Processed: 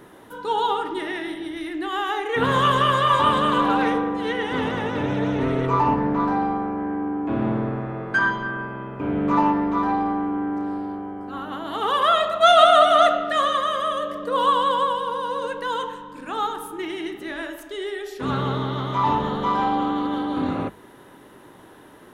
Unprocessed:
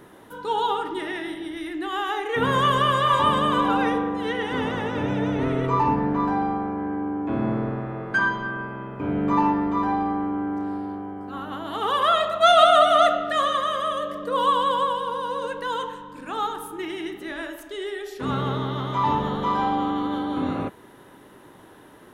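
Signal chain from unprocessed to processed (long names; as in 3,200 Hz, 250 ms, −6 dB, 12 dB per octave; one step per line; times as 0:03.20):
mains-hum notches 50/100/150/200 Hz
highs frequency-modulated by the lows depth 0.13 ms
level +1.5 dB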